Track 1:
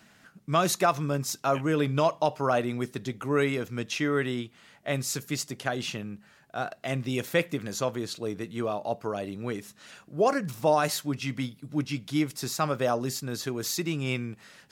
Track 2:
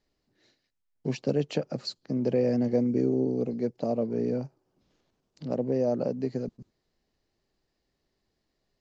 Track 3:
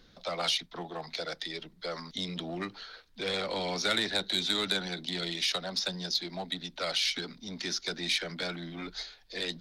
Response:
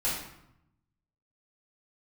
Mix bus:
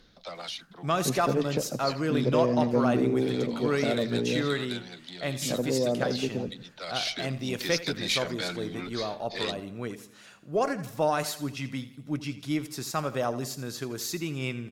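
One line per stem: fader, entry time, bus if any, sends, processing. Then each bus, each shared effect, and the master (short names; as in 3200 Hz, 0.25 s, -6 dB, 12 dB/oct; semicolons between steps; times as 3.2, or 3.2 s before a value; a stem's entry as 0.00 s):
-3.0 dB, 0.35 s, no send, echo send -14.5 dB, dry
-0.5 dB, 0.00 s, no send, echo send -17.5 dB, dry
+1.5 dB, 0.00 s, no send, no echo send, auto duck -10 dB, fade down 0.45 s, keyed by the second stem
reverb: off
echo: feedback echo 83 ms, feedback 47%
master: added harmonics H 6 -33 dB, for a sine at -10 dBFS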